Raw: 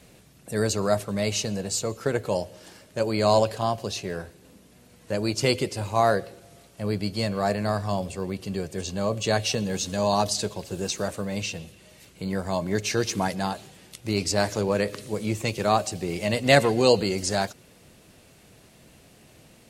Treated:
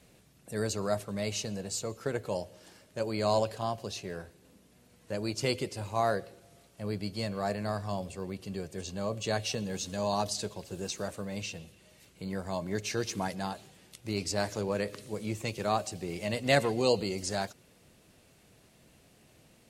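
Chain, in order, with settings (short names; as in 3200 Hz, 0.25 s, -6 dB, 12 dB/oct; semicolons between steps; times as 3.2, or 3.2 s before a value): 16.73–17.21 bell 1600 Hz -10.5 dB 0.23 oct; gain -7.5 dB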